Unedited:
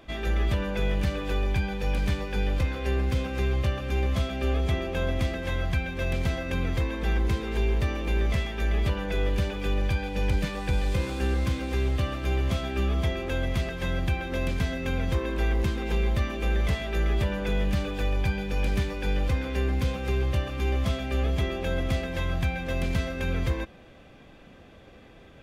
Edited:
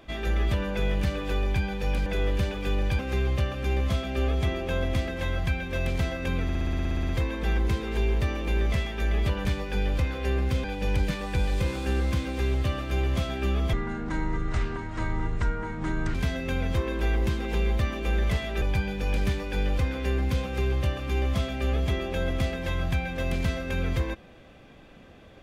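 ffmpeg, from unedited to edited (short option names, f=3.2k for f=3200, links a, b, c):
-filter_complex "[0:a]asplit=19[a][b][c][d][e][f][g][h][i][j][k][l][m][n][o][p][q][r][s];[a]atrim=end=2.062[t];[b]atrim=start=9.048:end=9.982[u];[c]atrim=start=3.248:end=6.752[v];[d]atrim=start=6.688:end=6.752[w];[e]atrim=start=6.688:end=6.752[x];[f]atrim=start=6.688:end=6.752[y];[g]atrim=start=6.688:end=6.752[z];[h]atrim=start=6.688:end=6.752[aa];[i]atrim=start=6.688:end=6.752[ab];[j]atrim=start=6.688:end=6.752[ac];[k]atrim=start=6.688:end=6.752[ad];[l]atrim=start=6.688:end=6.752[ae];[m]atrim=start=6.688:end=6.752[af];[n]atrim=start=6.688:end=9.052[ag];[o]atrim=start=2.058:end=3.252[ah];[p]atrim=start=9.978:end=13.074[ai];[q]atrim=start=13.07:end=14.52,asetpts=PTS-STARTPTS,asetrate=26460,aresample=44100[aj];[r]atrim=start=14.516:end=16.992[ak];[s]atrim=start=18.118[al];[t][u]acrossfade=d=0.004:c1=hsin:c2=hsin[am];[am][v]acrossfade=d=0.004:c1=hsin:c2=hsin[an];[an][w]acrossfade=d=0.004:c1=hsin:c2=hsin[ao];[ao][x]acrossfade=d=0.004:c1=hsin:c2=hsin[ap];[ap][y]acrossfade=d=0.004:c1=hsin:c2=hsin[aq];[aq][z]acrossfade=d=0.004:c1=hsin:c2=hsin[ar];[ar][aa]acrossfade=d=0.004:c1=hsin:c2=hsin[as];[as][ab]acrossfade=d=0.004:c1=hsin:c2=hsin[at];[at][ac]acrossfade=d=0.004:c1=hsin:c2=hsin[au];[au][ad]acrossfade=d=0.004:c1=hsin:c2=hsin[av];[av][ae]acrossfade=d=0.004:c1=hsin:c2=hsin[aw];[aw][af]acrossfade=d=0.004:c1=hsin:c2=hsin[ax];[ax][ag]acrossfade=d=0.004:c1=hsin:c2=hsin[ay];[ay][ah]acrossfade=d=0.004:c1=hsin:c2=hsin[az];[az][ai]acrossfade=d=0.004:c1=hsin:c2=hsin[ba];[ba][aj]acrossfade=d=0.004:c1=hsin:c2=hsin[bb];[bb][ak]acrossfade=d=0.004:c1=hsin:c2=hsin[bc];[bc][al]acrossfade=d=0.004:c1=hsin:c2=hsin"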